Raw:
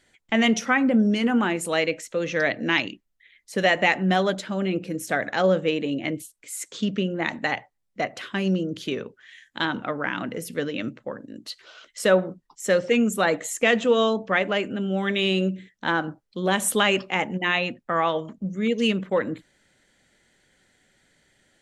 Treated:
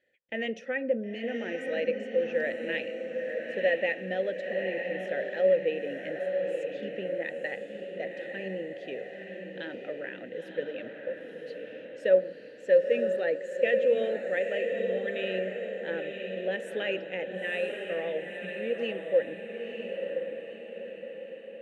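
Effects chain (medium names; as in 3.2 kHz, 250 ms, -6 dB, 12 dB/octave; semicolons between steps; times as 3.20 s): vowel filter e; bass shelf 280 Hz +10.5 dB; echo that smears into a reverb 967 ms, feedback 51%, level -5 dB; trim -1 dB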